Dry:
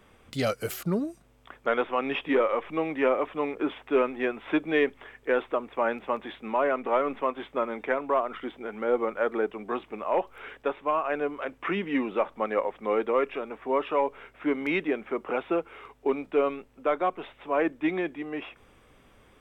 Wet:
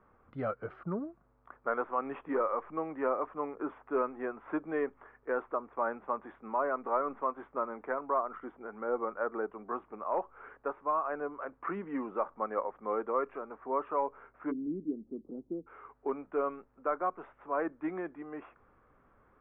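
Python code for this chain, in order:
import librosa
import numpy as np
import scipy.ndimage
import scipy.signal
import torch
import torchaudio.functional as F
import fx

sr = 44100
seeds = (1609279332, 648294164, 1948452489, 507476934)

y = fx.ladder_lowpass(x, sr, hz=fx.steps((0.0, 1500.0), (14.5, 320.0), (15.66, 1600.0)), resonance_pct=45)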